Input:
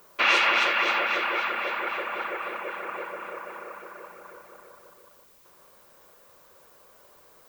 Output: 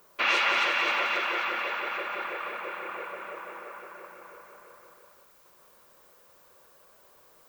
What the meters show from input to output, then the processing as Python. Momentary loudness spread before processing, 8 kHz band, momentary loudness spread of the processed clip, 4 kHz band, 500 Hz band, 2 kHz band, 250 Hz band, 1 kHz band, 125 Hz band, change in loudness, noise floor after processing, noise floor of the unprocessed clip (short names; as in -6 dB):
21 LU, -2.5 dB, 20 LU, -2.5 dB, -3.0 dB, -2.5 dB, -3.5 dB, -2.5 dB, n/a, -3.0 dB, -59 dBFS, -56 dBFS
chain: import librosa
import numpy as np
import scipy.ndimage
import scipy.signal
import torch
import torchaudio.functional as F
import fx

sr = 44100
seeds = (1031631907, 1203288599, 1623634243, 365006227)

y = fx.echo_thinned(x, sr, ms=178, feedback_pct=69, hz=440.0, wet_db=-6.5)
y = y * librosa.db_to_amplitude(-4.0)